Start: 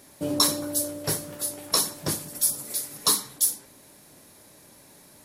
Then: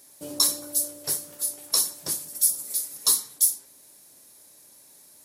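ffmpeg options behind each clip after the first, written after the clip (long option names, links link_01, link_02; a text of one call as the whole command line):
ffmpeg -i in.wav -af "bass=frequency=250:gain=-6,treble=frequency=4000:gain=11,volume=-8.5dB" out.wav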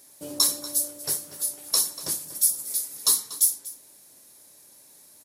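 ffmpeg -i in.wav -filter_complex "[0:a]asplit=2[link_01][link_02];[link_02]adelay=239.1,volume=-13dB,highshelf=frequency=4000:gain=-5.38[link_03];[link_01][link_03]amix=inputs=2:normalize=0" out.wav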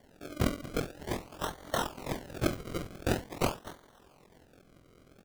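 ffmpeg -i in.wav -filter_complex "[0:a]asplit=2[link_01][link_02];[link_02]aeval=exprs='(mod(8.91*val(0)+1,2)-1)/8.91':channel_layout=same,volume=-11.5dB[link_03];[link_01][link_03]amix=inputs=2:normalize=0,acrusher=samples=34:mix=1:aa=0.000001:lfo=1:lforange=34:lforate=0.46,tremolo=f=43:d=0.667,volume=-5.5dB" out.wav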